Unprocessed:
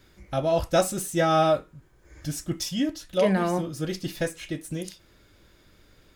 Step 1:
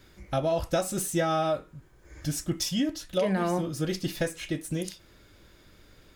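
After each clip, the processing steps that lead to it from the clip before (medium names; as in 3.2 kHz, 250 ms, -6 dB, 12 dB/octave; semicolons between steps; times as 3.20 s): compression 6:1, threshold -24 dBFS, peak gain reduction 9 dB; trim +1.5 dB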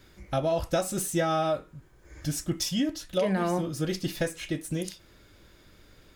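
no audible change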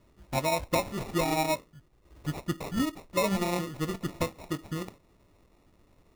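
sample-and-hold 28×; upward expansion 1.5:1, over -35 dBFS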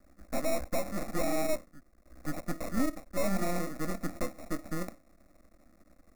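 Chebyshev shaper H 5 -11 dB, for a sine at -15.5 dBFS; half-wave rectifier; static phaser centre 620 Hz, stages 8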